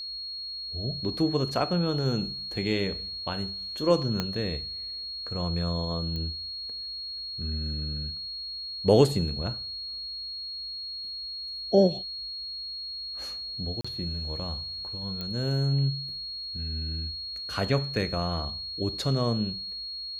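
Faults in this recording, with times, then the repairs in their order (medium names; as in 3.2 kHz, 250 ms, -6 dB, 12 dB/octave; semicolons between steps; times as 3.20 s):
whine 4.3 kHz -34 dBFS
4.20 s: pop -13 dBFS
6.16 s: pop -23 dBFS
13.81–13.85 s: dropout 35 ms
15.21 s: pop -20 dBFS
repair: de-click; band-stop 4.3 kHz, Q 30; interpolate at 13.81 s, 35 ms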